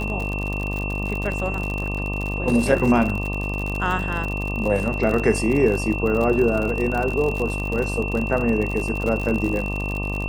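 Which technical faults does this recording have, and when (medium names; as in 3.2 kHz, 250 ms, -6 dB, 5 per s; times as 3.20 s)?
buzz 50 Hz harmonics 24 -27 dBFS
crackle 63 per s -25 dBFS
whine 2.7 kHz -29 dBFS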